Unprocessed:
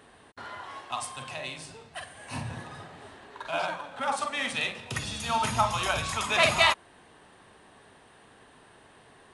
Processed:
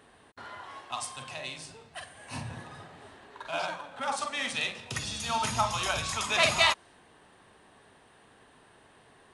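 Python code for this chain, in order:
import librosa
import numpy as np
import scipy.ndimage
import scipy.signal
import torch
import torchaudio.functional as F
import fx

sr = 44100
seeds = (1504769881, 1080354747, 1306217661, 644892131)

y = fx.dynamic_eq(x, sr, hz=5700.0, q=1.0, threshold_db=-48.0, ratio=4.0, max_db=6)
y = F.gain(torch.from_numpy(y), -3.0).numpy()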